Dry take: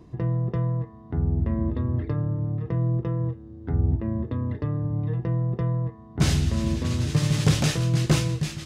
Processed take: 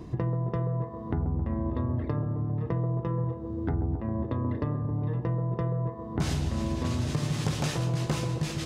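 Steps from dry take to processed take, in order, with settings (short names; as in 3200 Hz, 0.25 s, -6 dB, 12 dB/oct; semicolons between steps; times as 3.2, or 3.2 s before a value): dynamic EQ 930 Hz, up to +6 dB, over -47 dBFS, Q 1.3; compressor 6:1, threshold -34 dBFS, peak gain reduction 18 dB; band-limited delay 0.134 s, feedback 71%, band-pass 450 Hz, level -5.5 dB; gain +7 dB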